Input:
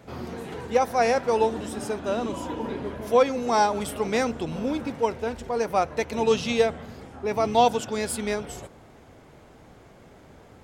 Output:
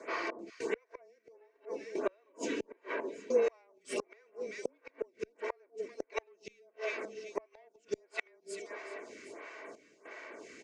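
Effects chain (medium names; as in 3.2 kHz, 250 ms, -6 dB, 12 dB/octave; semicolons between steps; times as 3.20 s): dynamic bell 490 Hz, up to +8 dB, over -35 dBFS, Q 0.94; comb 2.6 ms, depth 49%; compression 2:1, threshold -28 dBFS, peak gain reduction 12 dB; overdrive pedal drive 13 dB, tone 3.3 kHz, clips at -12 dBFS; frequency shift -24 Hz; trance gate "xx..xxxxx" 100 bpm -60 dB; Butterworth band-stop 760 Hz, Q 4.6; cabinet simulation 370–8100 Hz, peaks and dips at 390 Hz -4 dB, 820 Hz -5 dB, 1.3 kHz -8 dB, 2.2 kHz +6 dB, 3.4 kHz -10 dB, 6.5 kHz +4 dB; echo whose repeats swap between lows and highs 194 ms, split 830 Hz, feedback 65%, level -10.5 dB; inverted gate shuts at -22 dBFS, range -38 dB; lamp-driven phase shifter 1.5 Hz; trim +4.5 dB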